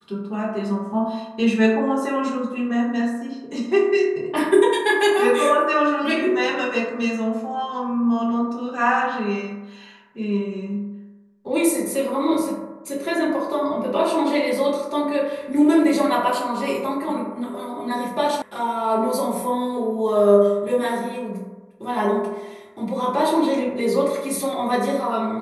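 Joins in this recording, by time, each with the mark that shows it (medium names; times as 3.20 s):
18.42 s: sound stops dead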